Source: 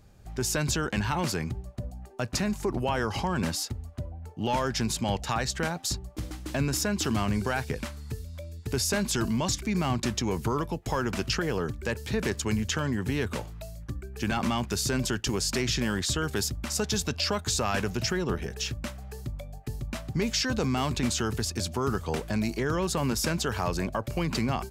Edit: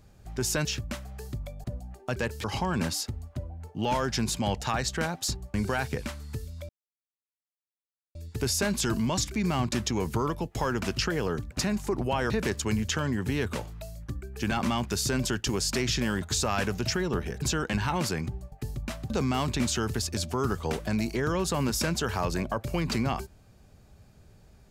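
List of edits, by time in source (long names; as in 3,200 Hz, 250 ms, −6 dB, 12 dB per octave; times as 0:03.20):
0:00.65–0:01.75: swap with 0:18.58–0:19.57
0:02.27–0:03.06: swap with 0:11.82–0:12.10
0:06.16–0:07.31: remove
0:08.46: splice in silence 1.46 s
0:16.02–0:17.38: remove
0:20.15–0:20.53: remove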